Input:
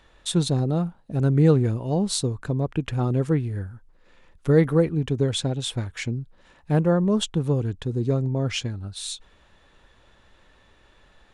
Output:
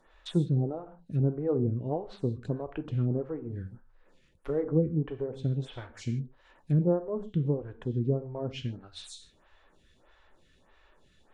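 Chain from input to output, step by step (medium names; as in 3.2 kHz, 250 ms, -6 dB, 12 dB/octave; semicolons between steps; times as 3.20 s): low-pass that closes with the level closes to 660 Hz, closed at -18 dBFS; gated-style reverb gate 180 ms falling, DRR 9 dB; lamp-driven phase shifter 1.6 Hz; trim -3.5 dB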